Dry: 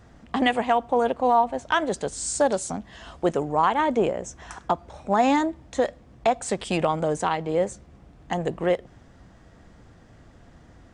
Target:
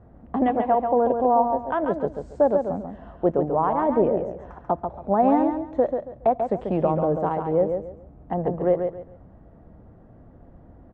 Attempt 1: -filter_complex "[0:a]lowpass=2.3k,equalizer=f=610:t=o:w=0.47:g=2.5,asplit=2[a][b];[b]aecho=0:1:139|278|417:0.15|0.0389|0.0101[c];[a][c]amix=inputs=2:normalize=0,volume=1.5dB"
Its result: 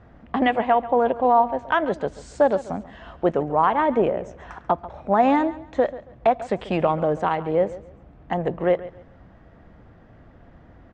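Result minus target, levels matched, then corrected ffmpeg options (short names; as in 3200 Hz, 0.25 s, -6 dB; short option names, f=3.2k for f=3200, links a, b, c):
2000 Hz band +10.0 dB; echo-to-direct -10.5 dB
-filter_complex "[0:a]lowpass=810,equalizer=f=610:t=o:w=0.47:g=2.5,asplit=2[a][b];[b]aecho=0:1:139|278|417:0.501|0.13|0.0339[c];[a][c]amix=inputs=2:normalize=0,volume=1.5dB"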